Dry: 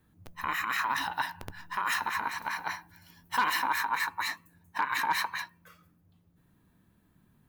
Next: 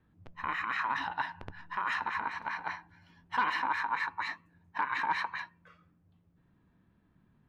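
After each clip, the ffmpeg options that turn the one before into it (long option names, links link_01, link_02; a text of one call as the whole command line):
ffmpeg -i in.wav -af "lowpass=2900,volume=-2dB" out.wav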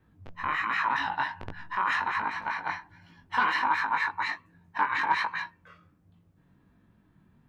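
ffmpeg -i in.wav -af "flanger=delay=18.5:depth=3.2:speed=1.3,volume=8dB" out.wav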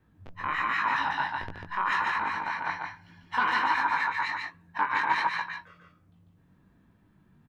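ffmpeg -i in.wav -af "aecho=1:1:145:0.668,volume=-1dB" out.wav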